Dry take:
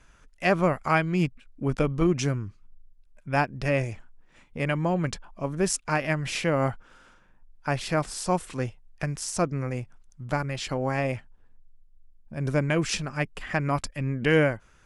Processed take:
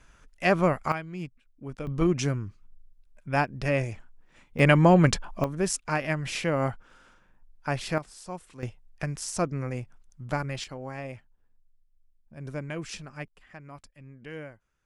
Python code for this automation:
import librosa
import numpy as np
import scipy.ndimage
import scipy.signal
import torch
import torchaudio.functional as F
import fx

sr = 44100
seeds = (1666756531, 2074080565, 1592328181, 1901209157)

y = fx.gain(x, sr, db=fx.steps((0.0, 0.0), (0.92, -12.0), (1.87, -1.0), (4.59, 8.0), (5.44, -2.0), (7.98, -13.0), (8.63, -2.0), (10.64, -10.5), (13.28, -19.5)))